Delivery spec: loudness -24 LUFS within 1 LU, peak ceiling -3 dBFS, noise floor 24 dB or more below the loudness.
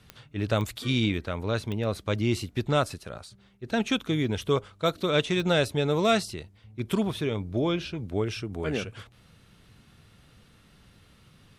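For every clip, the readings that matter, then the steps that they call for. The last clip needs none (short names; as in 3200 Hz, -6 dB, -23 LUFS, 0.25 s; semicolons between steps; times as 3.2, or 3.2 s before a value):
clicks 4; loudness -28.0 LUFS; peak -10.0 dBFS; loudness target -24.0 LUFS
-> de-click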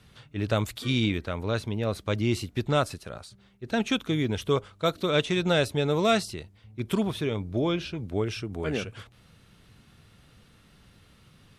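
clicks 0; loudness -28.0 LUFS; peak -10.0 dBFS; loudness target -24.0 LUFS
-> gain +4 dB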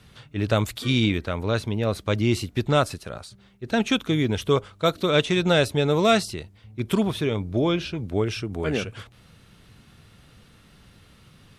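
loudness -24.0 LUFS; peak -6.0 dBFS; noise floor -55 dBFS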